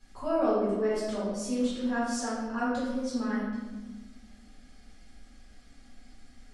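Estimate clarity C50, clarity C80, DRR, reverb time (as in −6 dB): −1.0 dB, 2.0 dB, −10.0 dB, 1.3 s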